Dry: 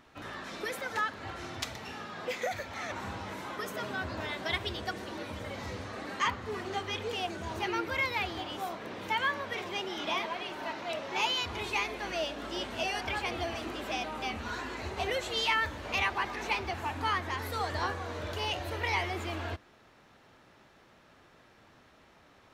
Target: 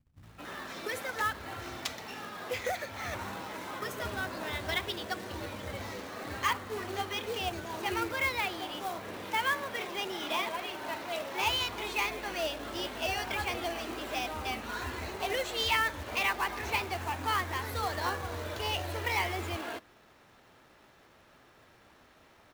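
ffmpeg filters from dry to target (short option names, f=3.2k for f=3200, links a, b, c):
-filter_complex "[0:a]acrossover=split=170[a][b];[b]adelay=230[c];[a][c]amix=inputs=2:normalize=0,acrusher=bits=3:mode=log:mix=0:aa=0.000001"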